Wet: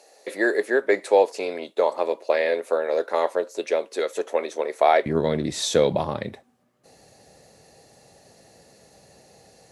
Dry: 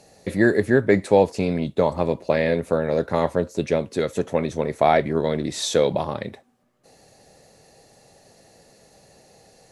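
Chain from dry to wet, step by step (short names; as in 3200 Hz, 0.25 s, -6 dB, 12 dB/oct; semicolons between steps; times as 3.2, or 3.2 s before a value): HPF 390 Hz 24 dB/oct, from 5.06 s 45 Hz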